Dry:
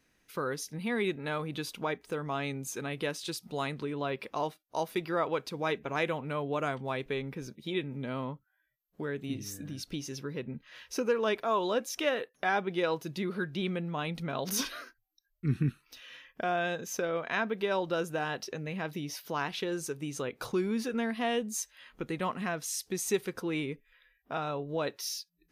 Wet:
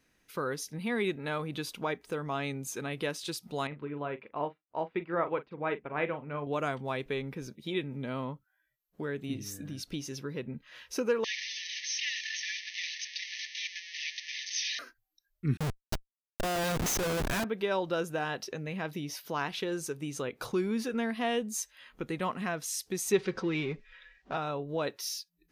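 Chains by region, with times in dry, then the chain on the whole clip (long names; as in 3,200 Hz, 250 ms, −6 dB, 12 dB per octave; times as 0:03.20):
0:03.67–0:06.47: low-pass filter 2,600 Hz 24 dB per octave + double-tracking delay 41 ms −10 dB + expander for the loud parts, over −52 dBFS
0:11.24–0:14.79: linear delta modulator 64 kbit/s, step −25.5 dBFS + linear-phase brick-wall band-pass 1,700–6,400 Hz + single-tap delay 292 ms −21.5 dB
0:15.57–0:17.44: bass and treble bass +7 dB, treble +14 dB + comparator with hysteresis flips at −34 dBFS
0:23.12–0:24.36: mu-law and A-law mismatch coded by mu + low-pass filter 5,700 Hz 24 dB per octave + comb filter 5.3 ms, depth 41%
whole clip: no processing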